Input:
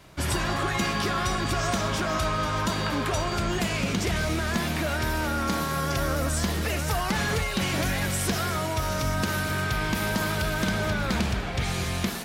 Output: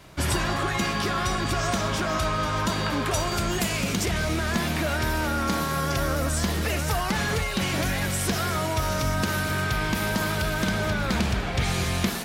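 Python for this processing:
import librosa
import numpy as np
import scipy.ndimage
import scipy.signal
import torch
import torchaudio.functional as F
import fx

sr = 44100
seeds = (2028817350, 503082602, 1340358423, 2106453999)

y = fx.high_shelf(x, sr, hz=7800.0, db=11.5, at=(3.11, 4.06))
y = fx.rider(y, sr, range_db=10, speed_s=0.5)
y = y * 10.0 ** (1.0 / 20.0)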